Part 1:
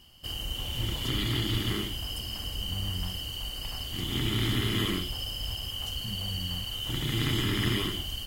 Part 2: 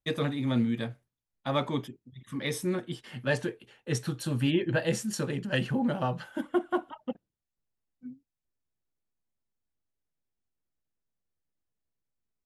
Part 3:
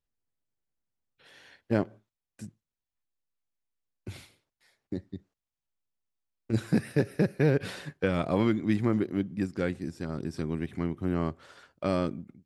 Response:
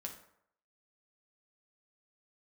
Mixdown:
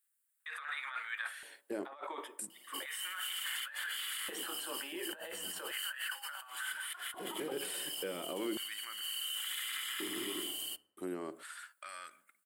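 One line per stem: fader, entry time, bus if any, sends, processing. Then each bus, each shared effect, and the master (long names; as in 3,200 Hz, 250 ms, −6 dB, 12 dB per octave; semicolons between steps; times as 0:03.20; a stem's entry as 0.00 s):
−11.5 dB, 2.50 s, bus A, send −8 dB, high-shelf EQ 8,400 Hz −9.5 dB
+2.0 dB, 0.40 s, no bus, send −6.5 dB, high-pass filter 790 Hz 12 dB per octave; soft clipping −20 dBFS, distortion −22 dB; resonant band-pass 1,100 Hz, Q 0.81
−6.0 dB, 0.00 s, muted 0:09.01–0:10.97, bus A, send −17.5 dB, no processing
bus A: 0.0 dB, spectral tilt +3 dB per octave; brickwall limiter −36 dBFS, peak gain reduction 17 dB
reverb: on, RT60 0.70 s, pre-delay 5 ms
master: high shelf with overshoot 7,200 Hz +7 dB, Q 3; compressor whose output falls as the input rises −43 dBFS, ratio −1; auto-filter high-pass square 0.35 Hz 340–1,500 Hz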